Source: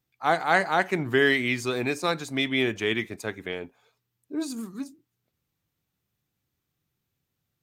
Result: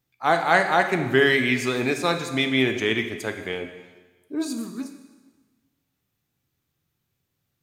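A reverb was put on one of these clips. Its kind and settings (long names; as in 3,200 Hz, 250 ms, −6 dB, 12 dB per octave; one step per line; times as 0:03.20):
dense smooth reverb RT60 1.3 s, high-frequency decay 1×, pre-delay 0 ms, DRR 6 dB
level +2.5 dB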